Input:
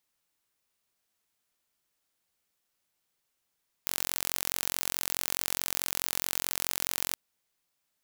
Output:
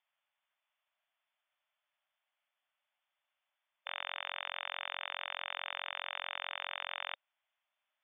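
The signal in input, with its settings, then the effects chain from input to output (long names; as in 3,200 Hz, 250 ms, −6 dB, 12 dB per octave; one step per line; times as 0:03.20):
impulse train 44.7 per second, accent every 0, −3 dBFS 3.29 s
linear-phase brick-wall band-pass 550–3,600 Hz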